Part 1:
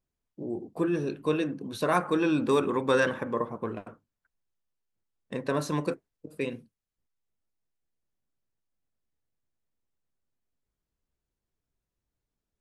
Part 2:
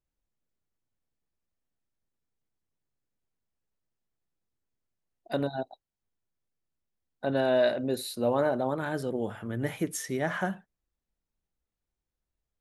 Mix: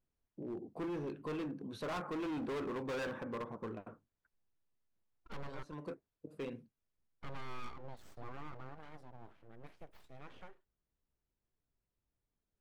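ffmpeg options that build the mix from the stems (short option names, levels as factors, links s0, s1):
-filter_complex "[0:a]volume=0.75[s0];[1:a]aeval=exprs='abs(val(0))':c=same,volume=0.596,afade=t=out:st=7.14:d=0.67:silence=0.398107,afade=t=out:st=8.65:d=0.36:silence=0.398107,asplit=2[s1][s2];[s2]apad=whole_len=556064[s3];[s0][s3]sidechaincompress=threshold=0.00398:ratio=5:attack=7.7:release=323[s4];[s4][s1]amix=inputs=2:normalize=0,lowpass=f=2400:p=1,asoftclip=type=hard:threshold=0.0282,alimiter=level_in=4.22:limit=0.0631:level=0:latency=1:release=250,volume=0.237"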